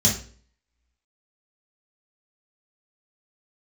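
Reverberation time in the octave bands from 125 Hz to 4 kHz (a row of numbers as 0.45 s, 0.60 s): 0.50 s, 0.50 s, 0.50 s, 0.40 s, 0.40 s, 0.40 s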